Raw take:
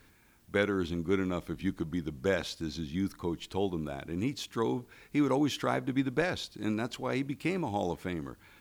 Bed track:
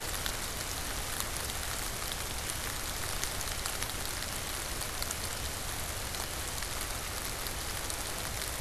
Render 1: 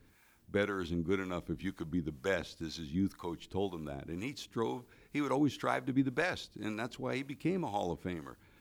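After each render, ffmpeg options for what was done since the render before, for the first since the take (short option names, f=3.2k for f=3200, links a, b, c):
-filter_complex "[0:a]acrossover=split=540[a][b];[a]aeval=exprs='val(0)*(1-0.7/2+0.7/2*cos(2*PI*2*n/s))':c=same[c];[b]aeval=exprs='val(0)*(1-0.7/2-0.7/2*cos(2*PI*2*n/s))':c=same[d];[c][d]amix=inputs=2:normalize=0"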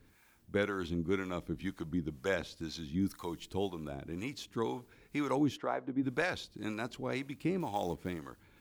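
-filter_complex "[0:a]asettb=1/sr,asplit=3[a][b][c];[a]atrim=end=3.014[d];[b]atrim=start=3.01:end=3.68,asetpts=PTS-STARTPTS,afade=t=in:d=0.004:c=qsin,afade=t=out:st=0.666:d=0.004:c=qsin,highshelf=f=4.7k:g=8[e];[c]atrim=start=3.676[f];[d][e]acrossfade=d=0.004:c1=hsin:c2=qsin[g];[g][f]acrossfade=d=0.004:c1=qsin:c2=hsin,asplit=3[h][i][j];[h]afade=t=out:st=5.56:d=0.02[k];[i]bandpass=f=530:t=q:w=0.69,afade=t=in:st=5.56:d=0.02,afade=t=out:st=6.02:d=0.02[l];[j]afade=t=in:st=6.02:d=0.02[m];[k][l][m]amix=inputs=3:normalize=0,asettb=1/sr,asplit=3[n][o][p];[n]atrim=end=7.604[q];[o]atrim=start=7.6:end=8.2,asetpts=PTS-STARTPTS,afade=t=in:d=0.004:c=qsin,afade=t=out:st=0.596:d=0.004:c=qsin,acrusher=bits=6:mode=log:mix=0:aa=0.000001[r];[p]atrim=start=8.196[s];[q][r]acrossfade=d=0.004:c1=hsin:c2=qsin[t];[t][s]acrossfade=d=0.004:c1=qsin:c2=hsin"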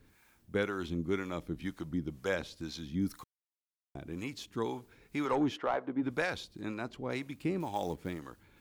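-filter_complex "[0:a]asettb=1/sr,asplit=3[a][b][c];[a]atrim=end=5.254[d];[b]atrim=start=5.25:end=6.11,asetpts=PTS-STARTPTS,afade=t=in:d=0.004:c=qsin,afade=t=out:st=0.856:d=0.004:c=qsin,asplit=2[e][f];[f]highpass=f=720:p=1,volume=14dB,asoftclip=type=tanh:threshold=-20dB[g];[e][g]amix=inputs=2:normalize=0,lowpass=f=1.8k:p=1,volume=-6dB[h];[c]atrim=start=6.106[i];[d][h]acrossfade=d=0.004:c1=hsin:c2=qsin[j];[j][i]acrossfade=d=0.004:c1=qsin:c2=hsin,asettb=1/sr,asplit=3[k][l][m];[k]atrim=end=6.614[n];[l]atrim=start=6.61:end=7.1,asetpts=PTS-STARTPTS,afade=t=in:d=0.004:c=qsin,afade=t=out:st=0.486:d=0.004:c=qsin,highshelf=f=4.3k:g=-10[o];[m]atrim=start=7.096[p];[n][o]acrossfade=d=0.004:c1=hsin:c2=qsin[q];[q][p]acrossfade=d=0.004:c1=qsin:c2=hsin,asplit=3[r][s][t];[r]atrim=end=3.24,asetpts=PTS-STARTPTS,afade=t=out:st=3.236:d=0.004:c=hsin[u];[s]atrim=start=3.24:end=3.95,asetpts=PTS-STARTPTS,volume=0[v];[t]atrim=start=3.95,asetpts=PTS-STARTPTS,afade=t=in:d=0.004:c=hsin[w];[u][v][w]concat=n=3:v=0:a=1"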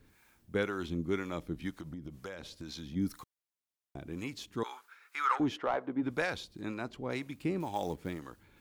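-filter_complex "[0:a]asplit=3[a][b][c];[a]afade=t=out:st=1.7:d=0.02[d];[b]acompressor=threshold=-38dB:ratio=16:attack=3.2:release=140:knee=1:detection=peak,afade=t=in:st=1.7:d=0.02,afade=t=out:st=2.95:d=0.02[e];[c]afade=t=in:st=2.95:d=0.02[f];[d][e][f]amix=inputs=3:normalize=0,asettb=1/sr,asplit=3[g][h][i];[g]atrim=end=4.634[j];[h]atrim=start=4.63:end=5.4,asetpts=PTS-STARTPTS,afade=t=in:d=0.004:c=qsin,afade=t=out:st=0.766:d=0.004:c=qsin,highpass=f=1.3k:t=q:w=4.1[k];[i]atrim=start=5.396[l];[j][k]acrossfade=d=0.004:c1=hsin:c2=qsin[m];[m][l]acrossfade=d=0.004:c1=qsin:c2=hsin"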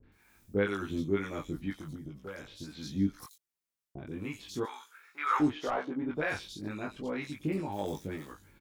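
-filter_complex "[0:a]asplit=2[a][b];[b]adelay=20,volume=-2.5dB[c];[a][c]amix=inputs=2:normalize=0,acrossover=split=800|3600[d][e][f];[e]adelay=30[g];[f]adelay=120[h];[d][g][h]amix=inputs=3:normalize=0"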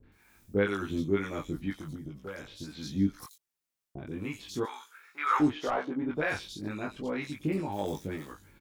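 -af "volume=2dB"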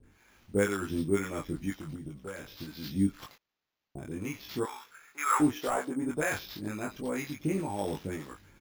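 -af "acrusher=samples=5:mix=1:aa=0.000001"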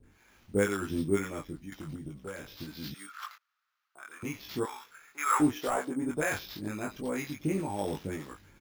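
-filter_complex "[0:a]asettb=1/sr,asplit=3[a][b][c];[a]atrim=end=2.944[d];[b]atrim=start=2.94:end=4.23,asetpts=PTS-STARTPTS,afade=t=in:d=0.004:c=qsin,afade=t=out:st=1.286:d=0.004:c=qsin,highpass=f=1.3k:t=q:w=5.6[e];[c]atrim=start=4.226[f];[d][e]acrossfade=d=0.004:c1=hsin:c2=qsin[g];[g][f]acrossfade=d=0.004:c1=qsin:c2=hsin,asplit=2[h][i];[h]atrim=end=1.72,asetpts=PTS-STARTPTS,afade=t=out:st=1.19:d=0.53:silence=0.237137[j];[i]atrim=start=1.72,asetpts=PTS-STARTPTS,afade=t=in:d=0.004:c=hsin:silence=0.237137[k];[j][k]concat=n=2:v=0:a=1"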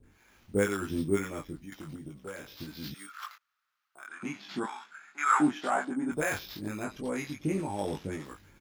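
-filter_complex "[0:a]asettb=1/sr,asplit=3[a][b][c];[a]atrim=end=1.654[d];[b]atrim=start=1.65:end=2.6,asetpts=PTS-STARTPTS,afade=t=in:d=0.004:c=qsin,afade=t=out:st=0.946:d=0.004:c=qsin,lowshelf=f=120:g=-7.5[e];[c]atrim=start=2.596[f];[d][e]acrossfade=d=0.004:c1=hsin:c2=qsin[g];[g][f]acrossfade=d=0.004:c1=qsin:c2=hsin,asettb=1/sr,asplit=3[h][i][j];[h]atrim=end=4.074[k];[i]atrim=start=4.07:end=6.12,asetpts=PTS-STARTPTS,afade=t=in:d=0.004:c=qsin,afade=t=out:st=2.046:d=0.004:c=qsin,highpass=f=160:w=0.5412,highpass=f=160:w=1.3066,equalizer=f=210:t=q:w=4:g=6,equalizer=f=470:t=q:w=4:g=-10,equalizer=f=760:t=q:w=4:g=5,equalizer=f=1.5k:t=q:w=4:g=7,equalizer=f=5.7k:t=q:w=4:g=-6,lowpass=f=8.4k:w=0.5412,lowpass=f=8.4k:w=1.3066[l];[j]atrim=start=6.116[m];[k][l]acrossfade=d=0.004:c1=hsin:c2=qsin[n];[n][m]acrossfade=d=0.004:c1=qsin:c2=hsin,asettb=1/sr,asplit=3[o][p][q];[o]atrim=end=6.844[r];[p]atrim=start=6.84:end=8.25,asetpts=PTS-STARTPTS,afade=t=in:d=0.004:c=qsin,afade=t=out:st=1.406:d=0.004:c=qsin,lowpass=11k[s];[q]atrim=start=8.246[t];[r][s]acrossfade=d=0.004:c1=hsin:c2=qsin[u];[u][t]acrossfade=d=0.004:c1=qsin:c2=hsin"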